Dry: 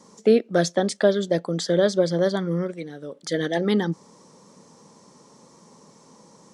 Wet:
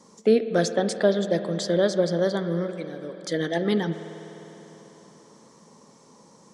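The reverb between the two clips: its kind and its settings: spring tank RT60 3.9 s, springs 50 ms, chirp 30 ms, DRR 9 dB; gain -2 dB

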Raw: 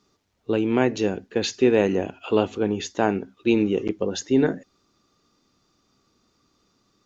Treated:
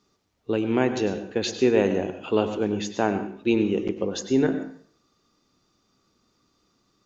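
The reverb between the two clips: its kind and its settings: plate-style reverb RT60 0.53 s, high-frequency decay 0.9×, pre-delay 85 ms, DRR 9.5 dB; gain -2 dB

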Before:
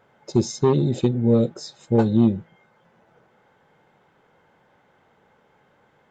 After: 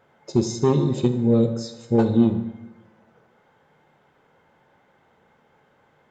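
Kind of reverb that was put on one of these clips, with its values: plate-style reverb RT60 1.1 s, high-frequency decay 0.75×, DRR 7.5 dB; gain -1 dB

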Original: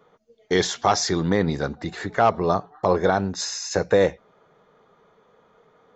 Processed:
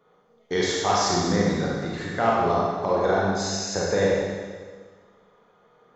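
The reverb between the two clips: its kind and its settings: Schroeder reverb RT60 1.6 s, combs from 31 ms, DRR -4.5 dB; gain -6.5 dB

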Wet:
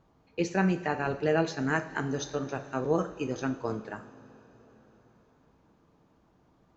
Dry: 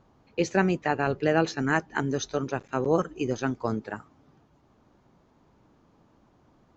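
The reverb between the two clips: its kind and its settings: two-slope reverb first 0.46 s, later 4.7 s, from -18 dB, DRR 6.5 dB; gain -4.5 dB

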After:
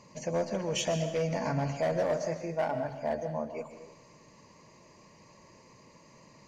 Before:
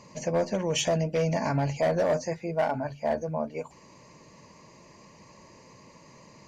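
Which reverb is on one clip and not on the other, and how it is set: digital reverb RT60 0.96 s, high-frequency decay 1×, pre-delay 90 ms, DRR 8.5 dB; gain -4.5 dB

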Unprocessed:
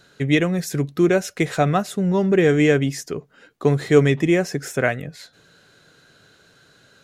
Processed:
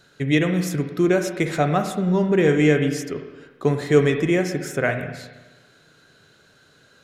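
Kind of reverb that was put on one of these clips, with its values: spring tank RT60 1.2 s, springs 33/52/60 ms, chirp 60 ms, DRR 6 dB; gain -2 dB

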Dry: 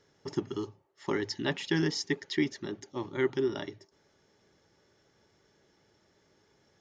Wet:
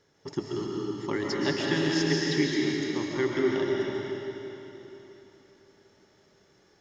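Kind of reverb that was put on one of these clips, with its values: digital reverb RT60 3.5 s, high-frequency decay 0.95×, pre-delay 95 ms, DRR -3.5 dB

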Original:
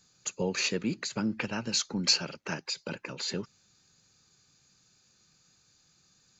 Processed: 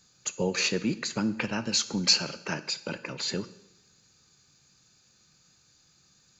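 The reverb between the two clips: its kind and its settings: two-slope reverb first 0.84 s, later 2.7 s, from -25 dB, DRR 13 dB; gain +2.5 dB

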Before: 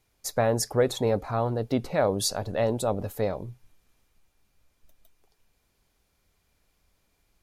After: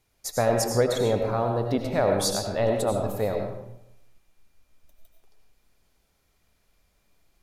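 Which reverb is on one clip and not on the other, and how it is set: digital reverb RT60 0.82 s, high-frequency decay 0.7×, pre-delay 55 ms, DRR 2.5 dB

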